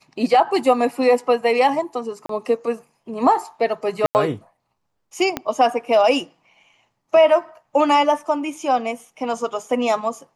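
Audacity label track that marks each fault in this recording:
2.260000	2.290000	dropout 33 ms
4.060000	4.150000	dropout 89 ms
5.370000	5.370000	pop -8 dBFS

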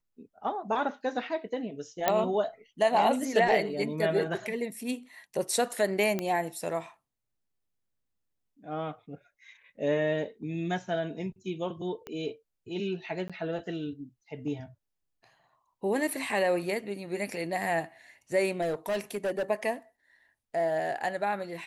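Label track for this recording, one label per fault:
2.080000	2.080000	pop -9 dBFS
6.190000	6.190000	pop -16 dBFS
12.070000	12.070000	pop -24 dBFS
13.280000	13.300000	dropout 16 ms
18.610000	19.430000	clipped -26 dBFS

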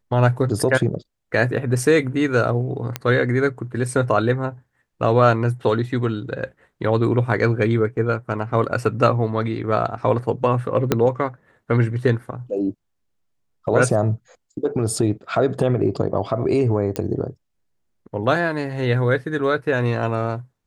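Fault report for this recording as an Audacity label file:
2.960000	2.960000	pop -8 dBFS
10.920000	10.920000	pop -3 dBFS
16.960000	16.960000	pop -9 dBFS

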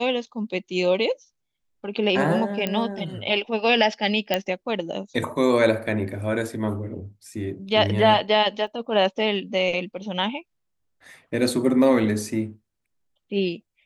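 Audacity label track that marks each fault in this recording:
2.670000	2.670000	pop -11 dBFS
4.340000	4.340000	pop -7 dBFS
8.670000	8.670000	dropout 3.9 ms

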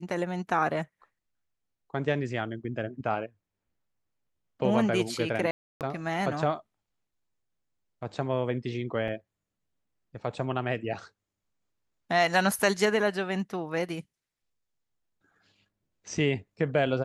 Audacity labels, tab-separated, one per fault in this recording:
5.510000	5.810000	dropout 298 ms
9.080000	9.080000	dropout 2.7 ms

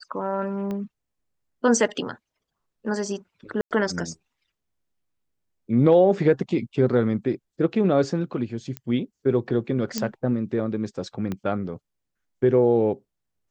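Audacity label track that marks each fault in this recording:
0.710000	0.710000	pop -20 dBFS
3.610000	3.710000	dropout 98 ms
8.770000	8.770000	pop -16 dBFS
9.980000	9.980000	pop -10 dBFS
11.320000	11.320000	pop -17 dBFS

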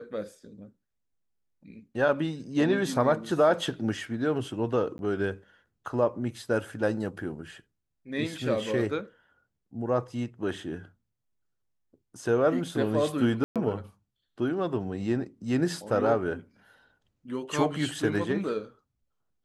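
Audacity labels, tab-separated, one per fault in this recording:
4.980000	4.990000	dropout 11 ms
13.440000	13.560000	dropout 117 ms

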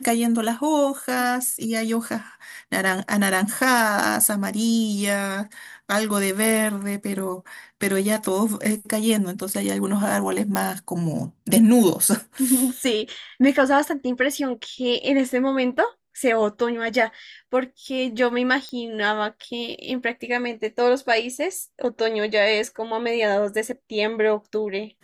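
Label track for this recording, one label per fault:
10.550000	10.550000	pop -7 dBFS
18.690000	18.690000	pop -21 dBFS

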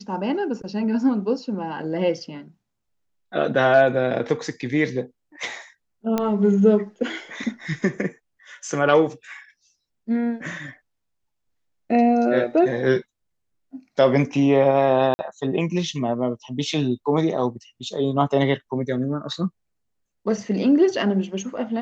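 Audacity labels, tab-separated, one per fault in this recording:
6.180000	6.180000	pop -9 dBFS
15.140000	15.190000	dropout 50 ms

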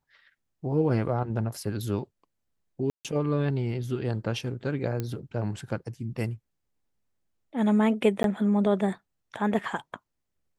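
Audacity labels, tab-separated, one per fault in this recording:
2.900000	3.050000	dropout 147 ms
5.000000	5.000000	pop -17 dBFS
8.230000	8.240000	dropout 12 ms

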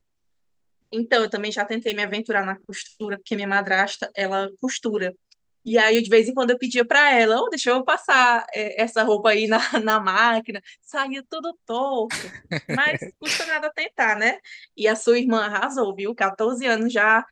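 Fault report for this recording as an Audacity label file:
1.900000	1.900000	pop -12 dBFS
5.950000	5.950000	pop -7 dBFS
9.900000	9.900000	pop -7 dBFS

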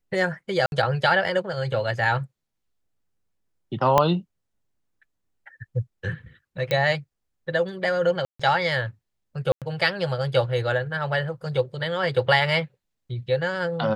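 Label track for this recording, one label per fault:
0.660000	0.720000	dropout 61 ms
3.980000	3.980000	pop -5 dBFS
6.710000	6.710000	pop -11 dBFS
8.250000	8.390000	dropout 145 ms
9.520000	9.620000	dropout 97 ms

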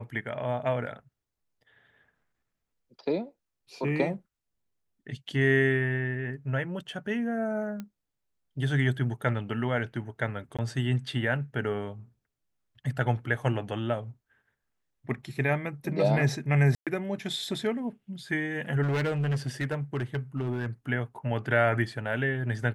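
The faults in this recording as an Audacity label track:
7.800000	7.800000	pop -24 dBFS
10.570000	10.590000	dropout 16 ms
16.750000	16.870000	dropout 117 ms
18.820000	20.660000	clipped -24.5 dBFS

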